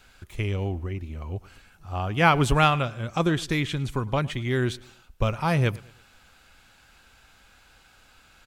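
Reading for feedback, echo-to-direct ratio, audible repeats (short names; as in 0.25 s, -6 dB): 40%, -21.5 dB, 2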